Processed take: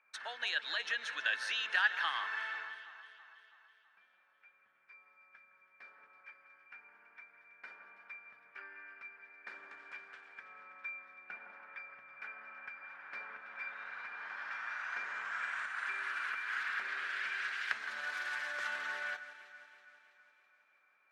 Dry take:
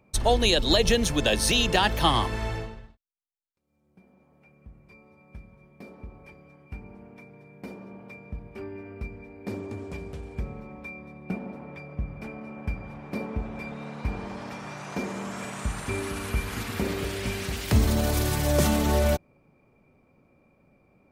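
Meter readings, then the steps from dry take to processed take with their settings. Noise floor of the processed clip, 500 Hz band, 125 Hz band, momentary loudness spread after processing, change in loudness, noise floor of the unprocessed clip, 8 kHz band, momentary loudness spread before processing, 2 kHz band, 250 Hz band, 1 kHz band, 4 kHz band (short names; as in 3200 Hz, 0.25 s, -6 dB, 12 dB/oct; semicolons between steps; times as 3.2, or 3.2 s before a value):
-71 dBFS, -27.5 dB, under -40 dB, 21 LU, -11.5 dB, -64 dBFS, under -20 dB, 20 LU, -0.5 dB, under -35 dB, -11.5 dB, -13.5 dB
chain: compressor 2:1, threshold -30 dBFS, peak gain reduction 8.5 dB; ladder band-pass 1700 Hz, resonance 70%; on a send: echo with dull and thin repeats by turns 0.164 s, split 2100 Hz, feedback 73%, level -11.5 dB; on the sum: gain +8.5 dB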